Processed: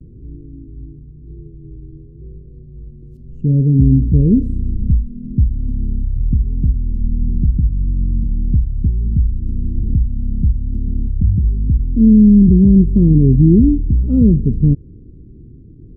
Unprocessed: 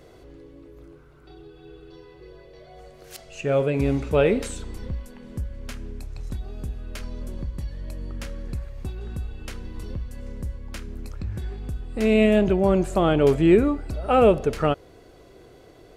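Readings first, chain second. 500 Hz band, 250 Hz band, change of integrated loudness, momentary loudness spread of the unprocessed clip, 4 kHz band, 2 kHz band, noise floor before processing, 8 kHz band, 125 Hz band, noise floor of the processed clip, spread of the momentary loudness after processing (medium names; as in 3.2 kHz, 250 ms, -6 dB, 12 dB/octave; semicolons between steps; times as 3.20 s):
-6.5 dB, +12.0 dB, +9.0 dB, 20 LU, under -35 dB, under -40 dB, -50 dBFS, under -30 dB, +16.5 dB, -39 dBFS, 12 LU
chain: inverse Chebyshev low-pass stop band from 640 Hz, stop band 50 dB; vibrato 0.95 Hz 60 cents; loudness maximiser +18 dB; trim -1 dB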